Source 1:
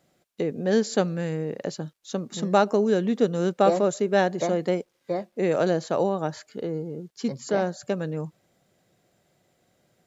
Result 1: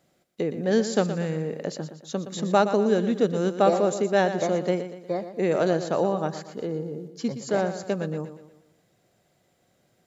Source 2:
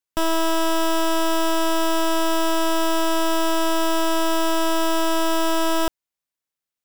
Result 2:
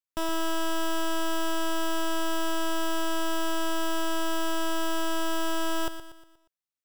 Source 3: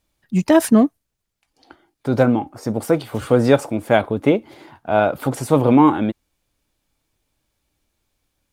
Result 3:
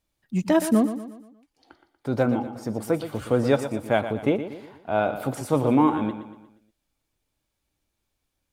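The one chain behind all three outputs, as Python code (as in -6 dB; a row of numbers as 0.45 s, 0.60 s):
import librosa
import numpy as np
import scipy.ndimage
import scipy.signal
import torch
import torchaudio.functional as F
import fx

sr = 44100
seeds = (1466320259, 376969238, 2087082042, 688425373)

y = fx.echo_feedback(x, sr, ms=119, feedback_pct=45, wet_db=-11)
y = y * 10.0 ** (-26 / 20.0) / np.sqrt(np.mean(np.square(y)))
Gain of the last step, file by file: -0.5 dB, -8.0 dB, -7.0 dB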